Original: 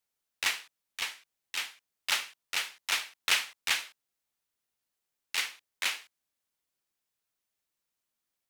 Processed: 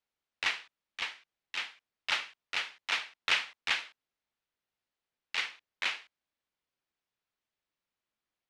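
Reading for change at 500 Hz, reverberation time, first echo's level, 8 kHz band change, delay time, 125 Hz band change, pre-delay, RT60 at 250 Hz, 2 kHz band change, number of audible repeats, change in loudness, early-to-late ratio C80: 0.0 dB, no reverb, no echo, -11.5 dB, no echo, no reading, no reverb, no reverb, -0.5 dB, no echo, -2.0 dB, no reverb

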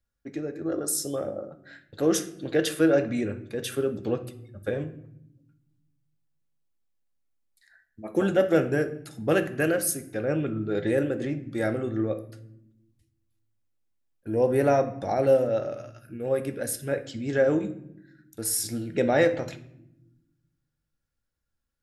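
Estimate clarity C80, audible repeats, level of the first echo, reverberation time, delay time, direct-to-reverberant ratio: 17.5 dB, no echo, no echo, 0.85 s, no echo, 8.0 dB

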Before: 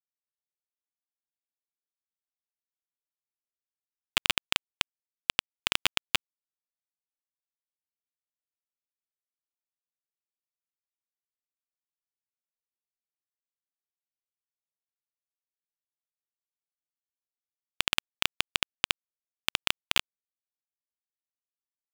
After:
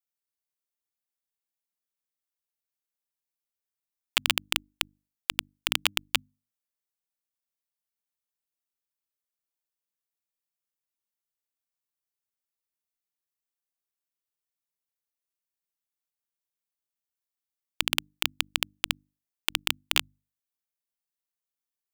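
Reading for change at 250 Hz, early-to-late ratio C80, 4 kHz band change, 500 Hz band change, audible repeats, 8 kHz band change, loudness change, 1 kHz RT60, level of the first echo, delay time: -0.5 dB, no reverb, +0.5 dB, 0.0 dB, no echo, +3.0 dB, +1.0 dB, no reverb, no echo, no echo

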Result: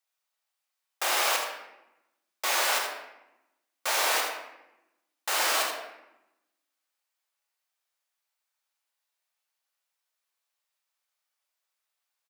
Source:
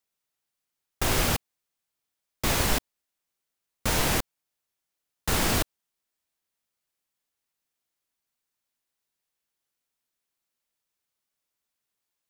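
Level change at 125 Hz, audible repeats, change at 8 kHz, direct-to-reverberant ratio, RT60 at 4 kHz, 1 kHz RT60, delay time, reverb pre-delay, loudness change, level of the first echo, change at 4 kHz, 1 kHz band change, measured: under -40 dB, 1, 0.0 dB, -0.5 dB, 0.65 s, 0.90 s, 81 ms, 3 ms, 0.0 dB, -7.5 dB, +1.5 dB, +3.0 dB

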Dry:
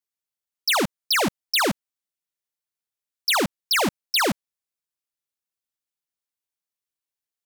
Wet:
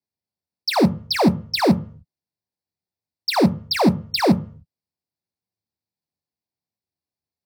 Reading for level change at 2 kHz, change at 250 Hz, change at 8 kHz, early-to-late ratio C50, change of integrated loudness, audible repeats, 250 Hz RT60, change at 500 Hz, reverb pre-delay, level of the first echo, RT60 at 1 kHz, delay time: -4.5 dB, +10.5 dB, -8.5 dB, 19.0 dB, +2.5 dB, no echo, 0.45 s, +5.5 dB, 3 ms, no echo, 0.45 s, no echo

